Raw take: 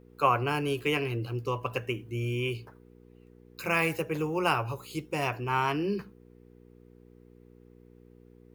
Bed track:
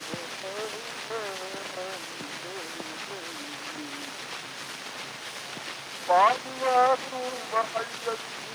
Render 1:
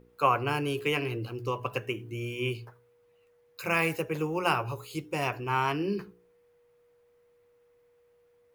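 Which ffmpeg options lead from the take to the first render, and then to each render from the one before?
-af "bandreject=f=60:t=h:w=4,bandreject=f=120:t=h:w=4,bandreject=f=180:t=h:w=4,bandreject=f=240:t=h:w=4,bandreject=f=300:t=h:w=4,bandreject=f=360:t=h:w=4,bandreject=f=420:t=h:w=4"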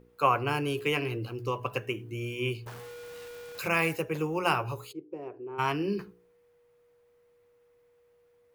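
-filter_complex "[0:a]asettb=1/sr,asplit=3[a][b][c];[a]atrim=end=2.664[d];[b]atrim=start=2.66:end=3.68,asetpts=PTS-STARTPTS,afade=t=in:d=0.004:c=qsin,afade=t=out:st=1.016:d=0.004:c=qsin,aeval=exprs='val(0)+0.5*0.0119*sgn(val(0))':c=same[e];[c]atrim=start=3.676[f];[d][e]acrossfade=d=0.004:c1=hsin:c2=qsin[g];[g][f]acrossfade=d=0.004:c1=qsin:c2=hsin,asplit=3[h][i][j];[h]afade=t=out:st=4.91:d=0.02[k];[i]bandpass=f=380:t=q:w=3.6,afade=t=in:st=4.91:d=0.02,afade=t=out:st=5.58:d=0.02[l];[j]afade=t=in:st=5.58:d=0.02[m];[k][l][m]amix=inputs=3:normalize=0"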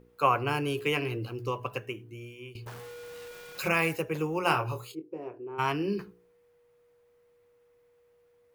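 -filter_complex "[0:a]asettb=1/sr,asplit=3[a][b][c];[a]atrim=end=3.314[d];[b]atrim=start=3.31:end=3.72,asetpts=PTS-STARTPTS,afade=t=in:d=0.004:c=qsin,afade=t=out:st=0.406:d=0.004:c=qsin,aecho=1:1:5.4:0.69,atrim=end_sample=18081[e];[c]atrim=start=3.716[f];[d][e]acrossfade=d=0.004:c1=hsin:c2=qsin[g];[g][f]acrossfade=d=0.004:c1=qsin:c2=hsin,asettb=1/sr,asplit=3[h][i][j];[h]atrim=end=4.444[k];[i]atrim=start=4.44:end=5.38,asetpts=PTS-STARTPTS,afade=t=in:d=0.004:c=qsin,afade=t=out:st=0.936:d=0.004:c=qsin,asplit=2[l][m];[m]adelay=25,volume=-8dB[n];[l][n]amix=inputs=2:normalize=0,atrim=end_sample=41454[o];[j]atrim=start=5.376[p];[k][o]acrossfade=d=0.004:c1=hsin:c2=qsin[q];[q][p]acrossfade=d=0.004:c1=qsin:c2=hsin,asplit=2[r][s];[r]atrim=end=2.55,asetpts=PTS-STARTPTS,afade=t=out:st=1.41:d=1.14:silence=0.125893[t];[s]atrim=start=2.55,asetpts=PTS-STARTPTS,afade=t=in:d=0.004:c=hsin:silence=0.125893[u];[t][u]concat=n=2:v=0:a=1"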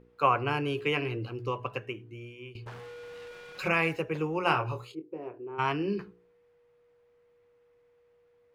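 -af "lowpass=2.9k,aemphasis=mode=production:type=50fm"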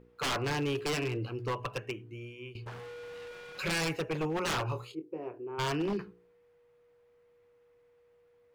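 -af "aeval=exprs='0.0501*(abs(mod(val(0)/0.0501+3,4)-2)-1)':c=same"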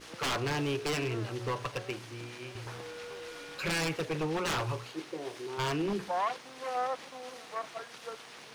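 -filter_complex "[1:a]volume=-11.5dB[a];[0:a][a]amix=inputs=2:normalize=0"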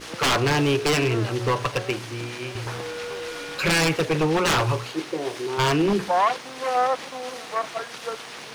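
-af "volume=11dB"

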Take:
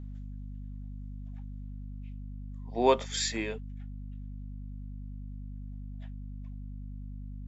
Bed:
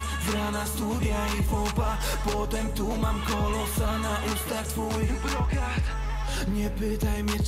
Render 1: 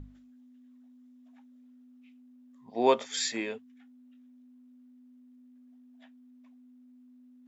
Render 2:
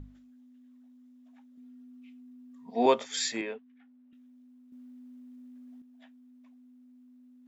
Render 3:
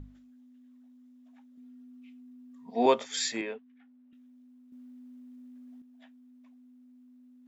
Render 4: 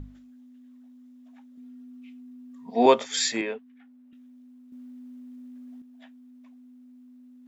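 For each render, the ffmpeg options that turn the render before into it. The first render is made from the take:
-af "bandreject=f=50:t=h:w=6,bandreject=f=100:t=h:w=6,bandreject=f=150:t=h:w=6,bandreject=f=200:t=h:w=6"
-filter_complex "[0:a]asettb=1/sr,asplit=3[a][b][c];[a]atrim=end=1.574[d];[b]atrim=start=1.57:end=2.86,asetpts=PTS-STARTPTS,afade=t=in:d=0.004:c=qsin,afade=t=out:st=1.286:d=0.004:c=qsin,aecho=1:1:4.3:0.89,atrim=end_sample=56889[e];[c]atrim=start=2.856[f];[d][e]acrossfade=d=0.004:c1=hsin:c2=qsin[g];[g][f]acrossfade=d=0.004:c1=qsin:c2=hsin,asettb=1/sr,asplit=3[h][i][j];[h]atrim=end=3.414[k];[i]atrim=start=3.41:end=4.13,asetpts=PTS-STARTPTS,afade=t=in:d=0.004:c=qsin,afade=t=out:st=0.716:d=0.004:c=qsin,highpass=250,lowpass=2.7k[l];[j]atrim=start=4.126[m];[k][l]acrossfade=d=0.004:c1=hsin:c2=qsin[n];[n][m]acrossfade=d=0.004:c1=qsin:c2=hsin,asettb=1/sr,asplit=3[o][p][q];[o]atrim=end=4.724[r];[p]atrim=start=4.72:end=5.82,asetpts=PTS-STARTPTS,afade=t=in:d=0.004:c=qsin,afade=t=out:st=1.096:d=0.004:c=qsin,acontrast=78[s];[q]atrim=start=5.816[t];[r][s]acrossfade=d=0.004:c1=hsin:c2=qsin[u];[u][t]acrossfade=d=0.004:c1=qsin:c2=hsin"
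-af anull
-af "volume=5.5dB"

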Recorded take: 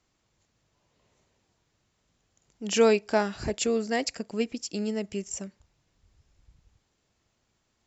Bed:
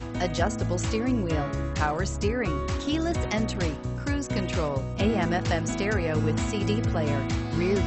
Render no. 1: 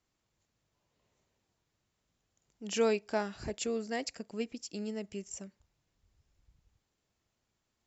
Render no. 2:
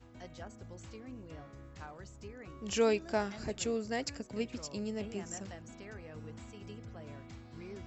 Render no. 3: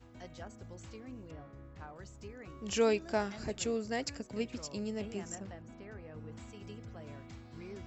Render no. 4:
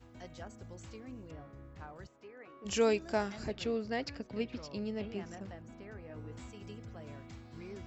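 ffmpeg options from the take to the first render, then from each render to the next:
-af "volume=-8dB"
-filter_complex "[1:a]volume=-22dB[a];[0:a][a]amix=inputs=2:normalize=0"
-filter_complex "[0:a]asettb=1/sr,asplit=3[a][b][c];[a]atrim=end=1.314[d];[b]atrim=start=1.31:end=1.96,asetpts=PTS-STARTPTS,afade=t=in:d=0.004:c=qsin,afade=t=out:st=0.646:d=0.004:c=qsin,lowpass=f=1.7k:p=1[e];[c]atrim=start=1.956[f];[d][e]acrossfade=d=0.004:c1=hsin:c2=qsin[g];[g][f]acrossfade=d=0.004:c1=qsin:c2=hsin,asettb=1/sr,asplit=3[h][i][j];[h]atrim=end=5.354[k];[i]atrim=start=5.35:end=6.32,asetpts=PTS-STARTPTS,afade=t=in:d=0.004:c=qsin,afade=t=out:st=0.966:d=0.004:c=qsin,lowpass=f=1.7k:p=1[l];[j]atrim=start=6.316[m];[k][l]acrossfade=d=0.004:c1=hsin:c2=qsin[n];[n][m]acrossfade=d=0.004:c1=qsin:c2=hsin"
-filter_complex "[0:a]asplit=3[a][b][c];[a]afade=t=out:st=2.06:d=0.02[d];[b]highpass=380,lowpass=2.7k,afade=t=in:st=2.06:d=0.02,afade=t=out:st=2.64:d=0.02[e];[c]afade=t=in:st=2.64:d=0.02[f];[d][e][f]amix=inputs=3:normalize=0,asettb=1/sr,asplit=3[g][h][i];[g]atrim=end=3.484[j];[h]atrim=start=3.48:end=5.41,asetpts=PTS-STARTPTS,afade=t=in:d=0.004:c=qsin,afade=t=out:st=1.926:d=0.004:c=qsin,lowpass=f=4.8k:w=0.5412,lowpass=f=4.8k:w=1.3066[k];[i]atrim=start=5.406[l];[j][k]acrossfade=d=0.004:c1=hsin:c2=qsin[m];[m][l]acrossfade=d=0.004:c1=qsin:c2=hsin,asettb=1/sr,asplit=3[n][o][p];[n]atrim=end=6.084[q];[o]atrim=start=6.08:end=6.48,asetpts=PTS-STARTPTS,afade=t=in:d=0.004:c=qsin,afade=t=out:st=0.396:d=0.004:c=qsin,asplit=2[r][s];[s]adelay=16,volume=-4dB[t];[r][t]amix=inputs=2:normalize=0,atrim=end_sample=17640[u];[p]atrim=start=6.476[v];[q][u]acrossfade=d=0.004:c1=hsin:c2=qsin[w];[w][v]acrossfade=d=0.004:c1=qsin:c2=hsin"

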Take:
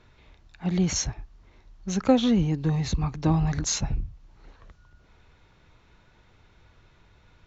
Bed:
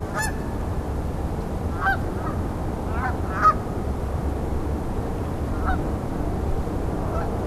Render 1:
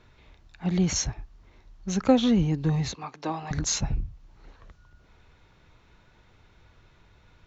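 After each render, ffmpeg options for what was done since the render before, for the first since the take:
-filter_complex "[0:a]asettb=1/sr,asplit=3[a][b][c];[a]atrim=end=2.924[d];[b]atrim=start=2.92:end=3.51,asetpts=PTS-STARTPTS,afade=t=in:d=0.004:c=qsin,afade=t=out:st=0.586:d=0.004:c=qsin,highpass=450,lowpass=6.7k[e];[c]atrim=start=3.506[f];[d][e]acrossfade=d=0.004:c1=hsin:c2=qsin[g];[g][f]acrossfade=d=0.004:c1=qsin:c2=hsin"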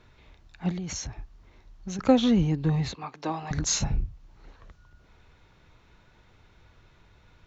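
-filter_complex "[0:a]asettb=1/sr,asplit=3[a][b][c];[a]atrim=end=0.714[d];[b]atrim=start=0.71:end=1.99,asetpts=PTS-STARTPTS,afade=t=in:d=0.004:c=qsin,afade=t=out:st=1.276:d=0.004:c=qsin,acompressor=threshold=-30dB:ratio=12:attack=3.2:release=140:knee=1:detection=peak[e];[c]atrim=start=1.986[f];[d][e]acrossfade=d=0.004:c1=hsin:c2=qsin[g];[g][f]acrossfade=d=0.004:c1=qsin:c2=hsin,asettb=1/sr,asplit=3[h][i][j];[h]atrim=end=2.524[k];[i]atrim=start=2.52:end=3.15,asetpts=PTS-STARTPTS,afade=t=in:d=0.004:c=qsin,afade=t=out:st=0.626:d=0.004:c=qsin,equalizer=f=6.1k:w=2.4:g=-7[l];[j]atrim=start=3.146[m];[k][l]acrossfade=d=0.004:c1=hsin:c2=qsin[n];[n][m]acrossfade=d=0.004:c1=qsin:c2=hsin,asettb=1/sr,asplit=3[o][p][q];[o]atrim=end=3.664[r];[p]atrim=start=3.66:end=4.06,asetpts=PTS-STARTPTS,afade=t=in:d=0.004:c=qsin,afade=t=out:st=0.396:d=0.004:c=qsin,asplit=2[s][t];[t]adelay=34,volume=-6.5dB[u];[s][u]amix=inputs=2:normalize=0,atrim=end_sample=17640[v];[q]atrim=start=4.056[w];[r][v]acrossfade=d=0.004:c1=hsin:c2=qsin[x];[x][w]acrossfade=d=0.004:c1=qsin:c2=hsin"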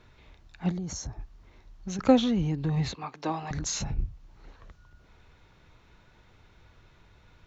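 -filter_complex "[0:a]asplit=3[a][b][c];[a]afade=t=out:st=0.7:d=0.02[d];[b]equalizer=f=2.6k:w=1.1:g=-14,afade=t=in:st=0.7:d=0.02,afade=t=out:st=1.19:d=0.02[e];[c]afade=t=in:st=1.19:d=0.02[f];[d][e][f]amix=inputs=3:normalize=0,asettb=1/sr,asplit=3[g][h][i];[g]atrim=end=2.204[j];[h]atrim=start=2.2:end=2.77,asetpts=PTS-STARTPTS,afade=t=in:d=0.004:c=qsin,afade=t=out:st=0.566:d=0.004:c=qsin,acompressor=threshold=-26dB:ratio=2:attack=3.2:release=140:knee=1:detection=peak[k];[i]atrim=start=2.766[l];[j][k]acrossfade=d=0.004:c1=hsin:c2=qsin[m];[m][l]acrossfade=d=0.004:c1=qsin:c2=hsin,asettb=1/sr,asplit=3[n][o][p];[n]atrim=end=3.364[q];[o]atrim=start=3.36:end=3.99,asetpts=PTS-STARTPTS,afade=t=in:d=0.004:c=qsin,afade=t=out:st=0.626:d=0.004:c=qsin,acompressor=threshold=-28dB:ratio=5:attack=3.2:release=140:knee=1:detection=peak[r];[p]atrim=start=3.986[s];[q][r]acrossfade=d=0.004:c1=hsin:c2=qsin[t];[t][s]acrossfade=d=0.004:c1=qsin:c2=hsin"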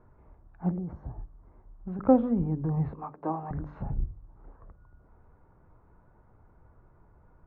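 -af "lowpass=f=1.2k:w=0.5412,lowpass=f=1.2k:w=1.3066,bandreject=f=49.44:t=h:w=4,bandreject=f=98.88:t=h:w=4,bandreject=f=148.32:t=h:w=4,bandreject=f=197.76:t=h:w=4,bandreject=f=247.2:t=h:w=4,bandreject=f=296.64:t=h:w=4,bandreject=f=346.08:t=h:w=4,bandreject=f=395.52:t=h:w=4,bandreject=f=444.96:t=h:w=4,bandreject=f=494.4:t=h:w=4,bandreject=f=543.84:t=h:w=4,bandreject=f=593.28:t=h:w=4"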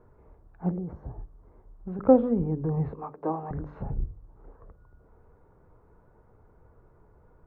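-af "equalizer=f=450:t=o:w=0.49:g=8"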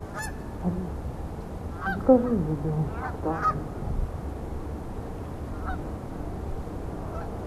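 -filter_complex "[1:a]volume=-8.5dB[a];[0:a][a]amix=inputs=2:normalize=0"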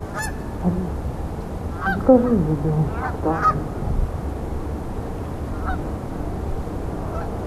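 -af "volume=7dB,alimiter=limit=-2dB:level=0:latency=1"

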